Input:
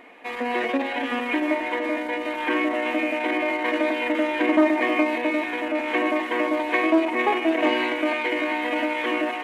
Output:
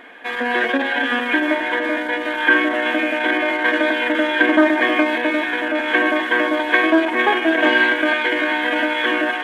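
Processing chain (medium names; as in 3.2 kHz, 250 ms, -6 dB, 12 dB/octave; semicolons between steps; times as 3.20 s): small resonant body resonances 1.6/3.3 kHz, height 17 dB, ringing for 25 ms; trim +3.5 dB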